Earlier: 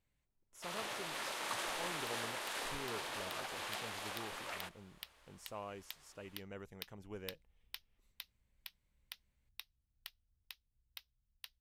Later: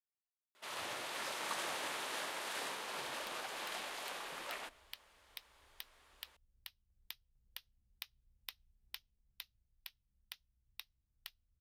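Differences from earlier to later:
speech: muted
second sound: entry +1.20 s

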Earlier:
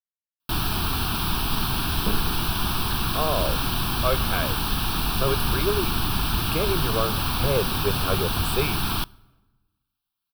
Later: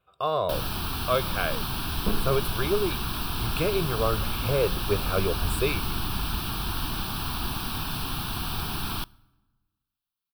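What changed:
speech: entry −2.95 s
first sound −5.5 dB

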